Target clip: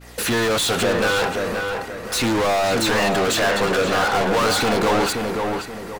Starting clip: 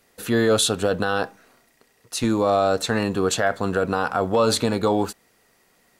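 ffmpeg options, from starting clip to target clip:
-filter_complex "[0:a]agate=range=-33dB:threshold=-56dB:ratio=3:detection=peak,aphaser=in_gain=1:out_gain=1:delay=2.2:decay=0.31:speed=0.41:type=triangular,asplit=2[a][b];[b]highpass=f=720:p=1,volume=37dB,asoftclip=type=tanh:threshold=-7.5dB[c];[a][c]amix=inputs=2:normalize=0,lowpass=f=6.5k:p=1,volume=-6dB,aeval=exprs='val(0)+0.0141*(sin(2*PI*60*n/s)+sin(2*PI*2*60*n/s)/2+sin(2*PI*3*60*n/s)/3+sin(2*PI*4*60*n/s)/4+sin(2*PI*5*60*n/s)/5)':c=same,asplit=2[d][e];[e]adelay=527,lowpass=f=2.5k:p=1,volume=-4dB,asplit=2[f][g];[g]adelay=527,lowpass=f=2.5k:p=1,volume=0.38,asplit=2[h][i];[i]adelay=527,lowpass=f=2.5k:p=1,volume=0.38,asplit=2[j][k];[k]adelay=527,lowpass=f=2.5k:p=1,volume=0.38,asplit=2[l][m];[m]adelay=527,lowpass=f=2.5k:p=1,volume=0.38[n];[f][h][j][l][n]amix=inputs=5:normalize=0[o];[d][o]amix=inputs=2:normalize=0,volume=-6.5dB"

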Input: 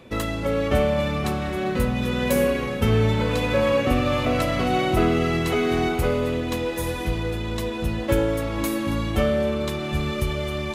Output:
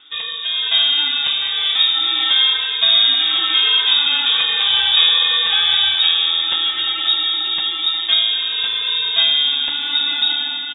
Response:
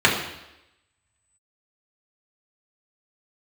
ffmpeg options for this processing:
-filter_complex "[0:a]dynaudnorm=f=450:g=3:m=7dB,asplit=2[a][b];[b]aecho=0:1:941:0.188[c];[a][c]amix=inputs=2:normalize=0,lowpass=f=3.2k:t=q:w=0.5098,lowpass=f=3.2k:t=q:w=0.6013,lowpass=f=3.2k:t=q:w=0.9,lowpass=f=3.2k:t=q:w=2.563,afreqshift=-3800"

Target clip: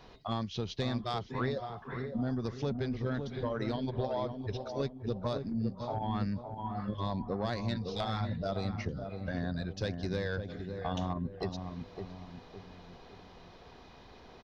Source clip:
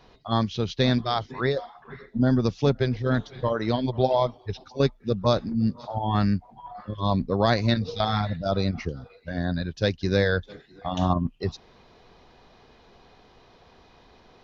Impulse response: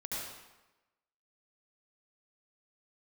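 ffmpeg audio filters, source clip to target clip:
-filter_complex "[0:a]acompressor=threshold=-32dB:ratio=4,asoftclip=type=tanh:threshold=-22dB,asplit=2[a][b];[b]adelay=560,lowpass=f=860:p=1,volume=-5.5dB,asplit=2[c][d];[d]adelay=560,lowpass=f=860:p=1,volume=0.46,asplit=2[e][f];[f]adelay=560,lowpass=f=860:p=1,volume=0.46,asplit=2[g][h];[h]adelay=560,lowpass=f=860:p=1,volume=0.46,asplit=2[i][j];[j]adelay=560,lowpass=f=860:p=1,volume=0.46,asplit=2[k][l];[l]adelay=560,lowpass=f=860:p=1,volume=0.46[m];[c][e][g][i][k][m]amix=inputs=6:normalize=0[n];[a][n]amix=inputs=2:normalize=0"

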